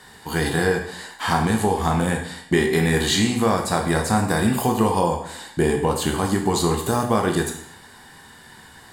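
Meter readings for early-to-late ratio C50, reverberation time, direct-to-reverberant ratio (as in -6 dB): 6.5 dB, 0.65 s, 2.0 dB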